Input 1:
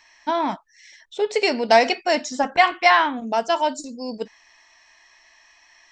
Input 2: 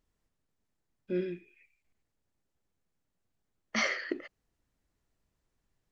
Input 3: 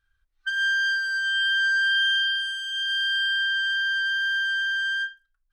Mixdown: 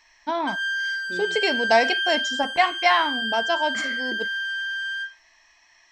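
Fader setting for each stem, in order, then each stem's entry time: -3.5, -5.5, -3.0 dB; 0.00, 0.00, 0.00 s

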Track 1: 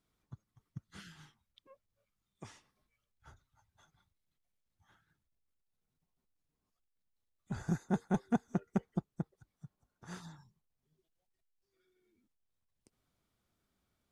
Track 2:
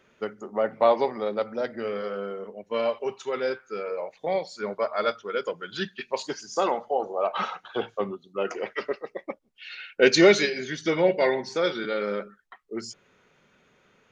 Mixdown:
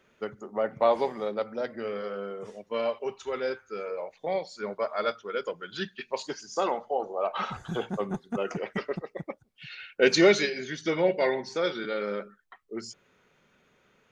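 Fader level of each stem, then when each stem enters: -2.0, -3.0 dB; 0.00, 0.00 s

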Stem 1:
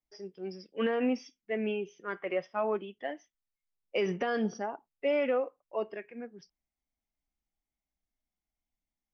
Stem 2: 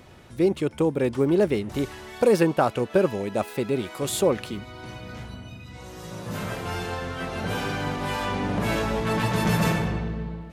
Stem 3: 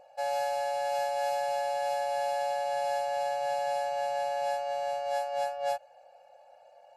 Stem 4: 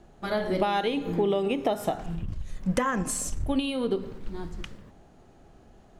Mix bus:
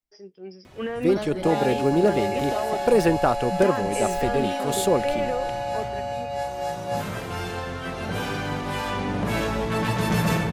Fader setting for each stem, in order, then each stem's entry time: -0.5, 0.0, +2.0, -4.5 dB; 0.00, 0.65, 1.25, 0.85 s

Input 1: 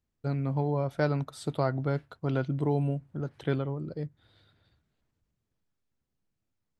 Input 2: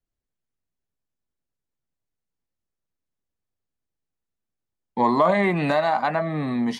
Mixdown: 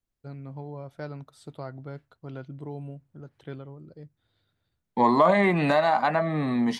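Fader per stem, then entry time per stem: -10.0, -0.5 dB; 0.00, 0.00 s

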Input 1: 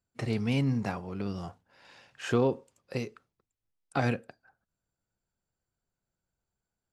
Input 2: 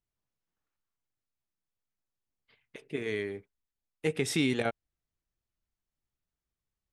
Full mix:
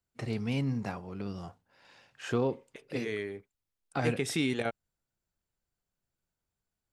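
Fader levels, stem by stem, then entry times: -3.5, -2.0 dB; 0.00, 0.00 s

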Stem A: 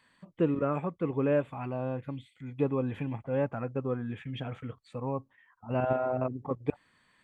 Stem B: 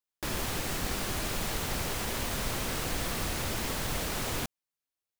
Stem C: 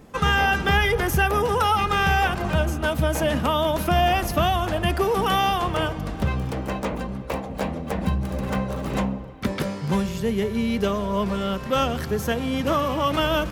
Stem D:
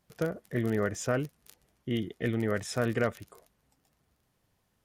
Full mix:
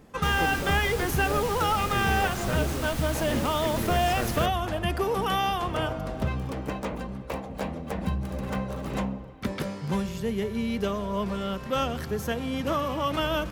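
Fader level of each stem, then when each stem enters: -7.5, -3.5, -5.0, -4.0 dB; 0.00, 0.00, 0.00, 1.40 s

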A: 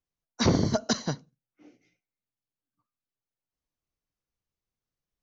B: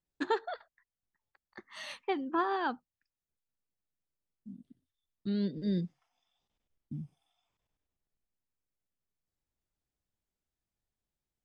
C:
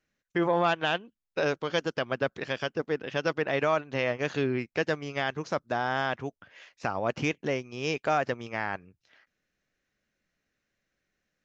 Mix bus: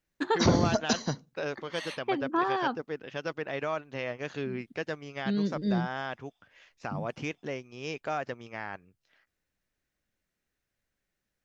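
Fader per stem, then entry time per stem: -1.0, +3.0, -6.5 dB; 0.00, 0.00, 0.00 s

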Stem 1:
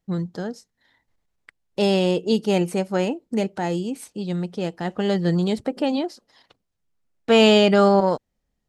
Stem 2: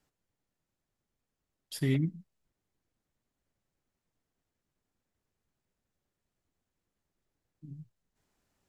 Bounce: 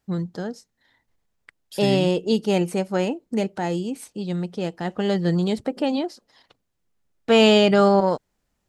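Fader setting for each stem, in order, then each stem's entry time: -0.5, +1.0 dB; 0.00, 0.00 s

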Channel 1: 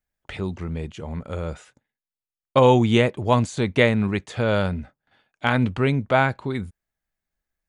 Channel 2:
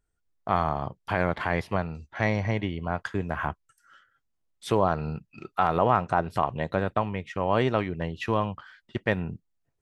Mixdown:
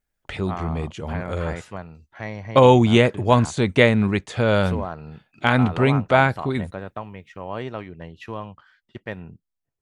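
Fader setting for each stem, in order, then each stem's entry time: +2.5, -7.0 dB; 0.00, 0.00 s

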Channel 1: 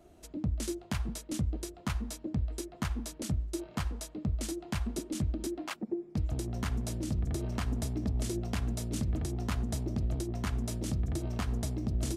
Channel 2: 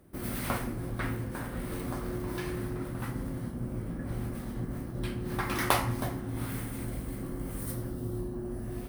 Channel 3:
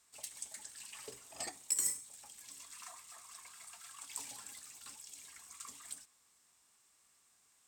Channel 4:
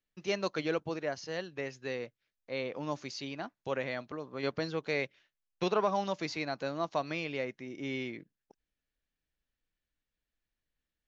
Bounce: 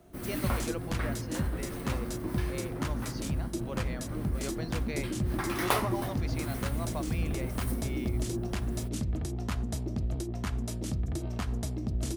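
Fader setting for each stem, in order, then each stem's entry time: 0.0 dB, -2.0 dB, off, -6.5 dB; 0.00 s, 0.00 s, off, 0.00 s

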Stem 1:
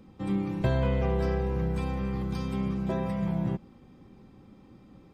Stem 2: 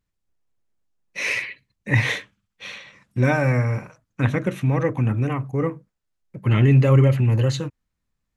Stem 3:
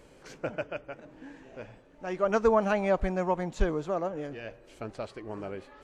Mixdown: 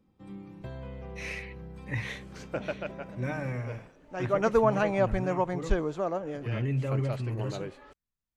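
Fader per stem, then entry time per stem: -15.0, -14.5, 0.0 dB; 0.00, 0.00, 2.10 s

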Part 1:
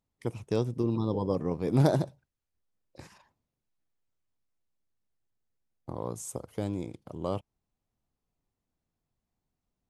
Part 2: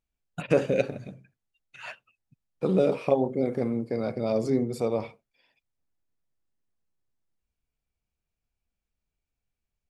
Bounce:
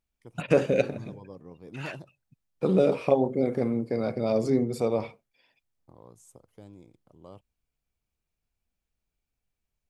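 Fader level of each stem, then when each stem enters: -16.0, +1.0 dB; 0.00, 0.00 s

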